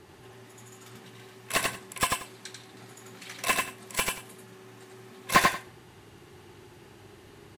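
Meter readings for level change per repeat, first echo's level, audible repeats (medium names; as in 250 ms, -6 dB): -14.5 dB, -3.0 dB, 2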